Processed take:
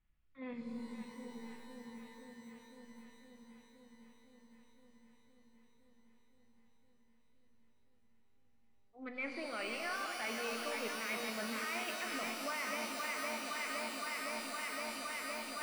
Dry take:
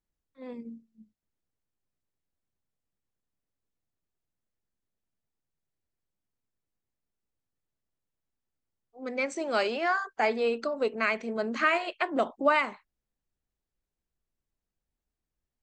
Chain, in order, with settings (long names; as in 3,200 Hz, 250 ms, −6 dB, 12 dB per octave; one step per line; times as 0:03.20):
parametric band 430 Hz −13.5 dB 1.9 octaves
on a send: delay that swaps between a low-pass and a high-pass 257 ms, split 820 Hz, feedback 87%, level −8.5 dB
on the sum: brickwall limiter −25 dBFS, peak gain reduction 10.5 dB
low-pass filter 2,800 Hz 24 dB per octave
parametric band 930 Hz −3 dB
reversed playback
downward compressor 4 to 1, threshold −52 dBFS, peak gain reduction 17 dB
reversed playback
notch filter 1,600 Hz, Q 17
reverb with rising layers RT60 3.5 s, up +12 semitones, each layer −2 dB, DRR 5.5 dB
level +10.5 dB